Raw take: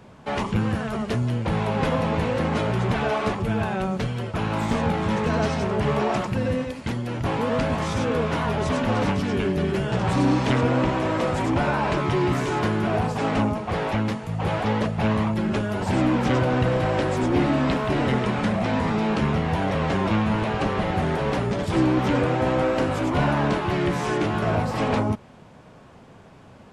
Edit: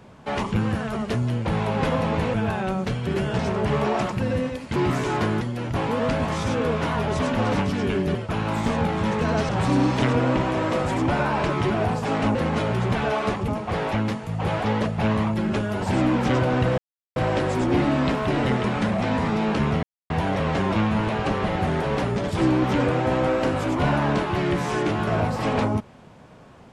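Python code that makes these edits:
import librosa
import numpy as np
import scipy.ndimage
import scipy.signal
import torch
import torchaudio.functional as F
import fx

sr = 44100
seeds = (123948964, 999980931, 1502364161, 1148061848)

y = fx.edit(x, sr, fx.move(start_s=2.34, length_s=1.13, to_s=13.48),
    fx.swap(start_s=4.2, length_s=1.34, other_s=9.65, other_length_s=0.32),
    fx.move(start_s=12.18, length_s=0.65, to_s=6.91),
    fx.insert_silence(at_s=16.78, length_s=0.38),
    fx.insert_silence(at_s=19.45, length_s=0.27), tone=tone)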